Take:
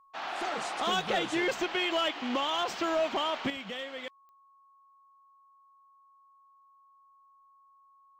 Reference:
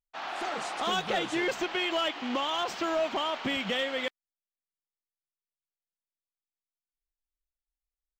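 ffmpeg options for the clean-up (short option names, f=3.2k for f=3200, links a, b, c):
-af "adeclick=t=4,bandreject=f=1.1k:w=30,asetnsamples=n=441:p=0,asendcmd='3.5 volume volume 8.5dB',volume=0dB"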